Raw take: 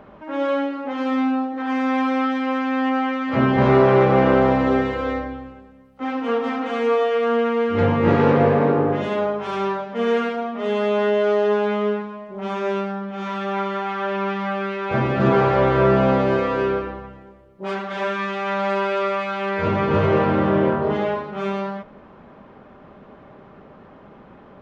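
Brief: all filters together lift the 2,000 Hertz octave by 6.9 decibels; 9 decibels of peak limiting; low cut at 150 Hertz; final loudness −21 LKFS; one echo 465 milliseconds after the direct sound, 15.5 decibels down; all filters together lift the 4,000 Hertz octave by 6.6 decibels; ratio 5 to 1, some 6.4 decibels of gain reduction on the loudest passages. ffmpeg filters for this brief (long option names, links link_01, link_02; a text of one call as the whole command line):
ffmpeg -i in.wav -af "highpass=150,equalizer=frequency=2000:width_type=o:gain=7.5,equalizer=frequency=4000:width_type=o:gain=5.5,acompressor=threshold=-18dB:ratio=5,alimiter=limit=-17dB:level=0:latency=1,aecho=1:1:465:0.168,volume=4dB" out.wav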